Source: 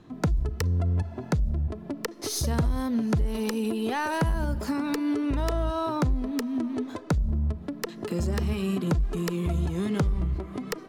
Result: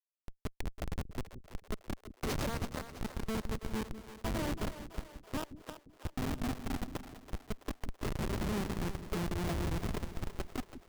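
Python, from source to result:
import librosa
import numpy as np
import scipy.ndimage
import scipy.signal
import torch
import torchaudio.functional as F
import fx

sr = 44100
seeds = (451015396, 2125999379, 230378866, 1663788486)

y = scipy.signal.sosfilt(scipy.signal.butter(2, 260.0, 'highpass', fs=sr, output='sos'), x)
y = fx.peak_eq(y, sr, hz=2300.0, db=4.0, octaves=0.81)
y = fx.over_compress(y, sr, threshold_db=-33.0, ratio=-0.5)
y = fx.schmitt(y, sr, flips_db=-28.5)
y = fx.echo_split(y, sr, split_hz=390.0, low_ms=175, high_ms=330, feedback_pct=52, wet_db=-11)
y = y * 10.0 ** (1.5 / 20.0)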